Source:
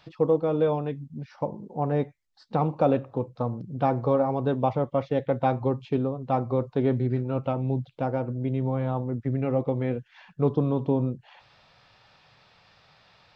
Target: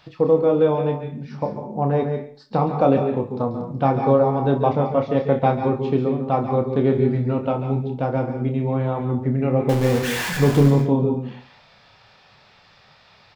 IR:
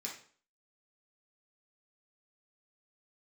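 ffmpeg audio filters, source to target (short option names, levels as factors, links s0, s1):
-filter_complex "[0:a]asettb=1/sr,asplit=3[s0][s1][s2];[s0]atrim=end=9.694[s3];[s1]atrim=start=9.69:end=10.68,asetpts=PTS-STARTPTS,afade=t=in:d=0.004:c=qsin,afade=t=out:st=0.986:d=0.004:c=qsin,aeval=exprs='val(0)+0.5*0.0501*sgn(val(0))':c=same[s4];[s2]atrim=start=10.676[s5];[s3][s4]acrossfade=d=0.004:c1=hsin:c2=qsin[s6];[s6][s5]acrossfade=d=0.004:c1=qsin:c2=hsin,aecho=1:1:29|64:0.447|0.158,asplit=2[s7][s8];[1:a]atrim=start_sample=2205,adelay=138[s9];[s8][s9]afir=irnorm=-1:irlink=0,volume=0.562[s10];[s7][s10]amix=inputs=2:normalize=0,volume=1.58"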